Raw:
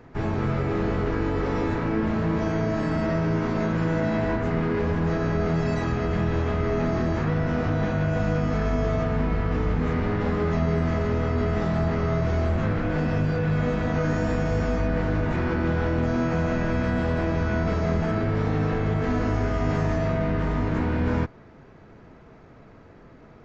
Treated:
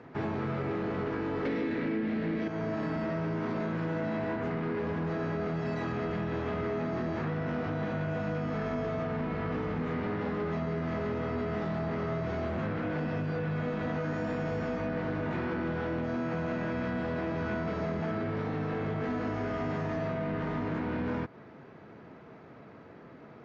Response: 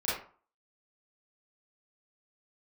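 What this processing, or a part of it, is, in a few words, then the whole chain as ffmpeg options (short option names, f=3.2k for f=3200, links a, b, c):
AM radio: -filter_complex "[0:a]asettb=1/sr,asplit=3[a][b][c];[a]atrim=end=1.454[d];[b]atrim=start=1.45:end=2.48,asetpts=PTS-STARTPTS,afade=t=in:d=0.004:c=qsin,afade=t=out:st=1.026:d=0.004:c=qsin,equalizer=f=250:t=o:w=1:g=11,equalizer=f=500:t=o:w=1:g=6,equalizer=f=1k:t=o:w=1:g=-6,equalizer=f=2k:t=o:w=1:g=11,equalizer=f=4k:t=o:w=1:g=8[e];[c]atrim=start=2.476[f];[d][e]acrossfade=d=0.004:c1=hsin:c2=qsin[g];[g][f]acrossfade=d=0.004:c1=qsin:c2=hsin,highpass=140,lowpass=4.4k,acompressor=threshold=-28dB:ratio=6,asoftclip=type=tanh:threshold=-23.5dB"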